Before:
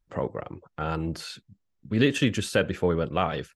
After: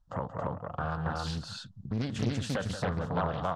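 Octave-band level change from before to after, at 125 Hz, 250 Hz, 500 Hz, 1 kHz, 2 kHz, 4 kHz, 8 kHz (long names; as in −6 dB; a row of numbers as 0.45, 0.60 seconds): −2.0, −7.0, −8.5, −2.0, −8.5, −7.0, −6.5 decibels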